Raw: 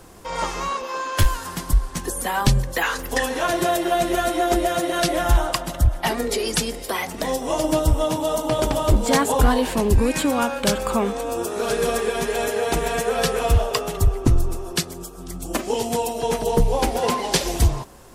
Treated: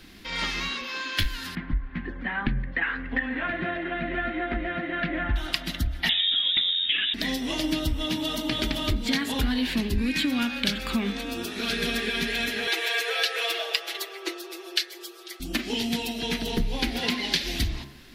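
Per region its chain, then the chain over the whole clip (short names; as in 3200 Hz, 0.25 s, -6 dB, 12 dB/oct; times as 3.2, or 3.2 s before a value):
1.55–5.36 LPF 2000 Hz 24 dB/oct + bell 370 Hz -5 dB 0.33 oct
6.09–7.14 low shelf 230 Hz +9.5 dB + notches 60/120/180/240/300/360/420/480 Hz + inverted band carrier 3700 Hz
12.67–15.4 steep high-pass 350 Hz 96 dB/oct + comb 6.1 ms, depth 78%
whole clip: ten-band EQ 125 Hz -6 dB, 250 Hz +9 dB, 500 Hz -11 dB, 1000 Hz -10 dB, 2000 Hz +9 dB, 4000 Hz +11 dB, 8000 Hz -11 dB; compressor, threshold -19 dBFS; de-hum 69.35 Hz, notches 32; gain -2.5 dB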